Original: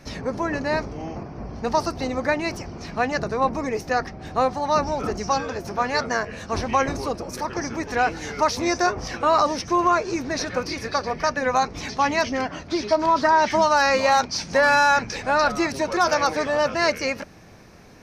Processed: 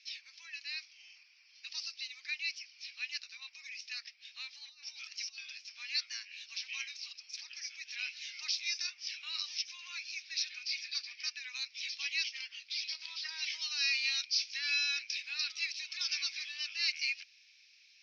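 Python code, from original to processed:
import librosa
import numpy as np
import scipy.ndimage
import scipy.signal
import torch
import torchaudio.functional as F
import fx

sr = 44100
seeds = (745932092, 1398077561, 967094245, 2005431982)

y = fx.over_compress(x, sr, threshold_db=-27.0, ratio=-0.5, at=(4.68, 5.38))
y = scipy.signal.sosfilt(scipy.signal.ellip(3, 1.0, 80, [2400.0, 5400.0], 'bandpass', fs=sr, output='sos'), y)
y = F.gain(torch.from_numpy(y), -2.0).numpy()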